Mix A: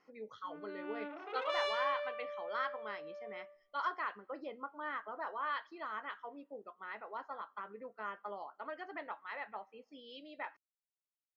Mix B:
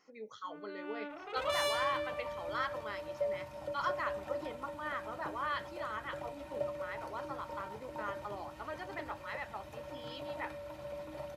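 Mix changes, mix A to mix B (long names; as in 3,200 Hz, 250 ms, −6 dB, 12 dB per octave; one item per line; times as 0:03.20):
second sound: unmuted
master: remove high-frequency loss of the air 180 metres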